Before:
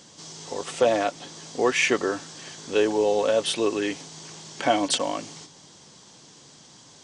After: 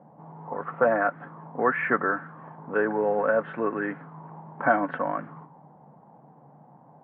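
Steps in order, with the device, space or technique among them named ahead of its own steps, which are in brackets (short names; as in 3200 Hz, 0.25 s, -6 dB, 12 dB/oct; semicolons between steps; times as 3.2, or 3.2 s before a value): envelope filter bass rig (envelope low-pass 740–1500 Hz up, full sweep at -27 dBFS; speaker cabinet 88–2000 Hz, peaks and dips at 100 Hz -7 dB, 150 Hz +9 dB, 220 Hz +4 dB, 370 Hz -6 dB); gain -2.5 dB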